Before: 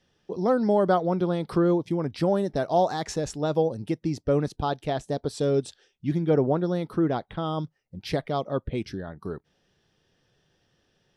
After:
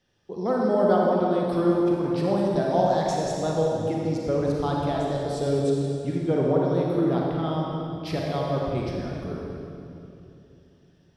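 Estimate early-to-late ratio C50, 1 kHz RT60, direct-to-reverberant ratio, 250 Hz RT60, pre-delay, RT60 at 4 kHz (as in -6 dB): -2.0 dB, 2.6 s, -3.0 dB, 3.6 s, 33 ms, 2.3 s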